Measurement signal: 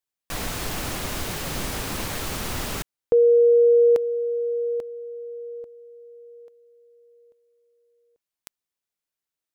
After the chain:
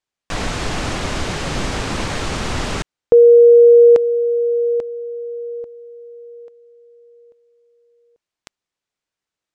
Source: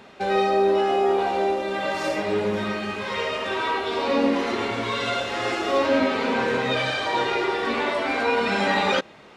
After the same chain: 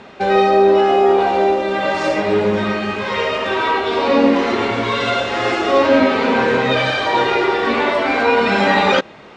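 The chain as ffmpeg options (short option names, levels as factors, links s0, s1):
-af "lowpass=f=8300:w=0.5412,lowpass=f=8300:w=1.3066,highshelf=f=4400:g=-6,volume=2.51"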